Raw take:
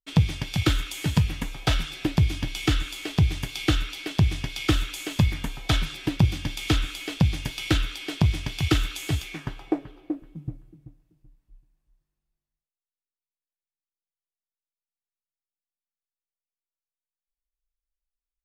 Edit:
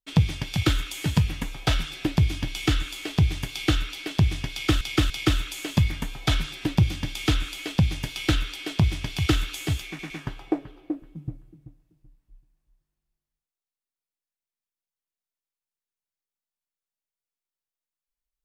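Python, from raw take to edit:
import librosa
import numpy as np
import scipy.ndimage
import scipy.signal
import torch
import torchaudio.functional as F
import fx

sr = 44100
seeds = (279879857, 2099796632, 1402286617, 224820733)

y = fx.edit(x, sr, fx.repeat(start_s=4.52, length_s=0.29, count=3),
    fx.stutter(start_s=9.3, slice_s=0.11, count=3), tone=tone)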